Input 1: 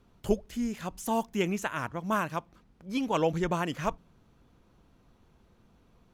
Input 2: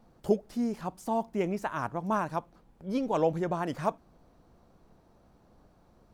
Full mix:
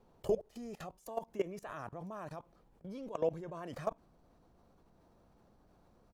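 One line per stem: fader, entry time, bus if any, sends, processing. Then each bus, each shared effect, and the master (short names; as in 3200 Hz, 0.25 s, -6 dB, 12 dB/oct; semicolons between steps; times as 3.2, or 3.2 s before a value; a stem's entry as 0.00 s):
-0.5 dB, 0.00 s, no send, band shelf 610 Hz +11 dB; auto duck -12 dB, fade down 1.95 s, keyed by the second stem
+1.0 dB, 2 ms, no send, dry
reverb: off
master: level quantiser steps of 22 dB; limiter -22.5 dBFS, peak gain reduction 9.5 dB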